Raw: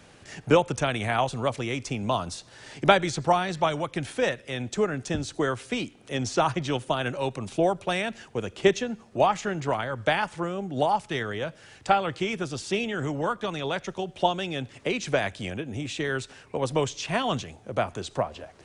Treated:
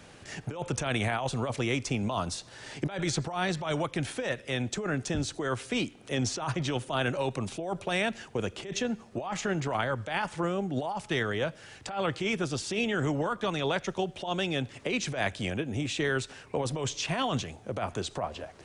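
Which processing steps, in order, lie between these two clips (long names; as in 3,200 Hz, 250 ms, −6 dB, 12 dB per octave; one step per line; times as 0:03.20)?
compressor whose output falls as the input rises −28 dBFS, ratio −1
level −1.5 dB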